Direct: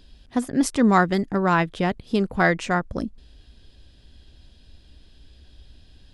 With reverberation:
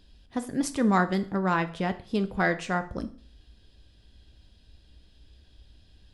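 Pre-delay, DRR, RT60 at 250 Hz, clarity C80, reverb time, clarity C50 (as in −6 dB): 3 ms, 8.5 dB, 0.45 s, 20.0 dB, 0.45 s, 15.5 dB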